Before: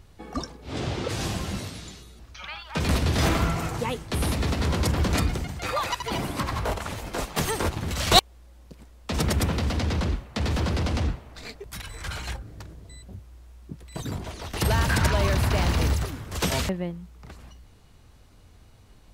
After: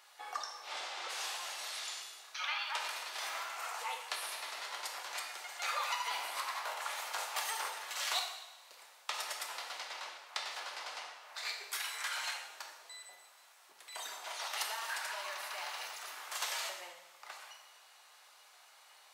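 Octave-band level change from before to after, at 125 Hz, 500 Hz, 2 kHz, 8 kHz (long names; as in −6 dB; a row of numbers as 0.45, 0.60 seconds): below −40 dB, −19.5 dB, −7.0 dB, −7.0 dB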